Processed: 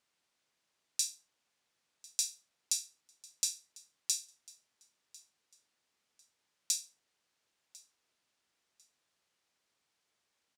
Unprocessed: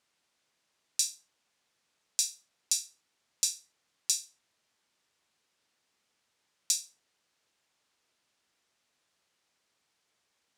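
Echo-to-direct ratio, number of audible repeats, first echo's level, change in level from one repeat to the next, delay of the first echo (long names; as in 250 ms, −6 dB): −22.0 dB, 2, −22.5 dB, −11.5 dB, 1,048 ms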